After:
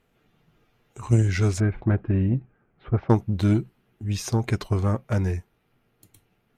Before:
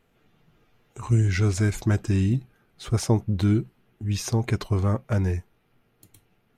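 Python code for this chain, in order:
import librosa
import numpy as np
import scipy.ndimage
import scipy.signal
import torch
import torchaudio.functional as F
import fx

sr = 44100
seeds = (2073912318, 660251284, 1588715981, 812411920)

y = fx.bessel_lowpass(x, sr, hz=1600.0, order=6, at=(1.6, 3.1))
y = fx.cheby_harmonics(y, sr, harmonics=(3,), levels_db=(-17,), full_scale_db=-9.5)
y = F.gain(torch.from_numpy(y), 3.5).numpy()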